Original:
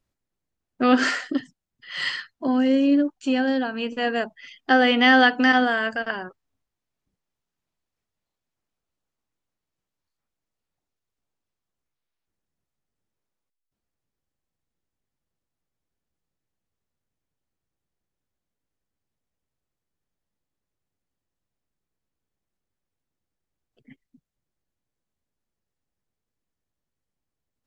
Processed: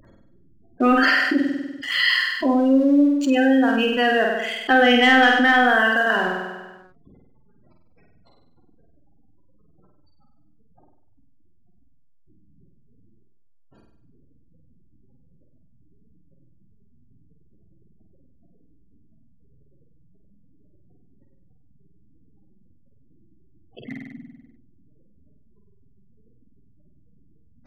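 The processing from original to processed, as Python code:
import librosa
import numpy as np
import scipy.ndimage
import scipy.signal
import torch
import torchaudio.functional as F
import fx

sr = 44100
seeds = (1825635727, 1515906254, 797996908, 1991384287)

p1 = fx.spec_gate(x, sr, threshold_db=-20, keep='strong')
p2 = fx.low_shelf(p1, sr, hz=110.0, db=-11.0)
p3 = fx.leveller(p2, sr, passes=1)
p4 = p3 + fx.room_flutter(p3, sr, wall_m=8.4, rt60_s=0.66, dry=0)
p5 = fx.env_flatten(p4, sr, amount_pct=50)
y = F.gain(torch.from_numpy(p5), -2.5).numpy()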